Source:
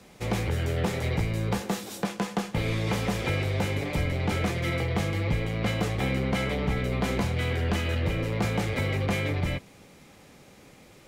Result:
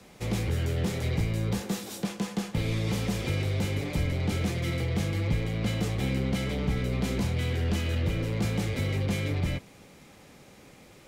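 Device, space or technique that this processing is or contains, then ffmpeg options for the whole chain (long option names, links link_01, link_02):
one-band saturation: -filter_complex "[0:a]acrossover=split=410|3000[link_01][link_02][link_03];[link_02]asoftclip=type=tanh:threshold=-39.5dB[link_04];[link_01][link_04][link_03]amix=inputs=3:normalize=0"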